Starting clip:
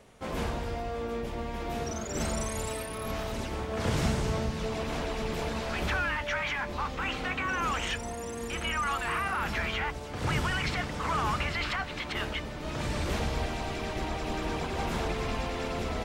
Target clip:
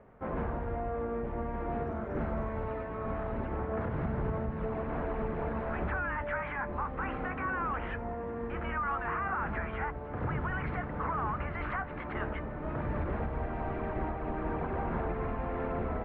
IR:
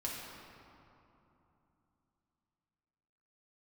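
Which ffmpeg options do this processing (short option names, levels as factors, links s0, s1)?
-af "lowpass=f=1700:w=0.5412,lowpass=f=1700:w=1.3066,alimiter=limit=0.0631:level=0:latency=1:release=229"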